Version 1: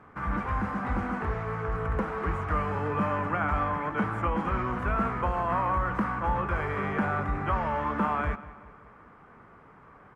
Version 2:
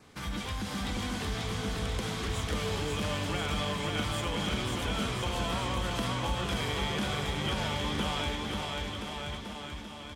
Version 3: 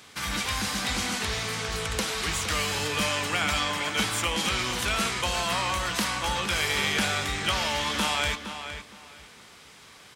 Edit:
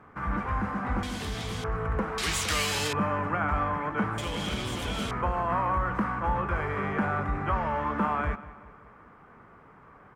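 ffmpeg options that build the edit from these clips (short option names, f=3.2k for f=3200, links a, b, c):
-filter_complex "[1:a]asplit=2[a][b];[0:a]asplit=4[c][d][e][f];[c]atrim=end=1.032[g];[a]atrim=start=1.028:end=1.642[h];[d]atrim=start=1.638:end=2.182[i];[2:a]atrim=start=2.178:end=2.932[j];[e]atrim=start=2.928:end=4.182[k];[b]atrim=start=4.178:end=5.112[l];[f]atrim=start=5.108[m];[g][h]acrossfade=d=0.004:c1=hsin:c2=hsin[n];[n][i]acrossfade=d=0.004:c1=hsin:c2=hsin[o];[o][j]acrossfade=d=0.004:c1=hsin:c2=hsin[p];[p][k]acrossfade=d=0.004:c1=hsin:c2=hsin[q];[q][l]acrossfade=d=0.004:c1=hsin:c2=hsin[r];[r][m]acrossfade=d=0.004:c1=hsin:c2=hsin"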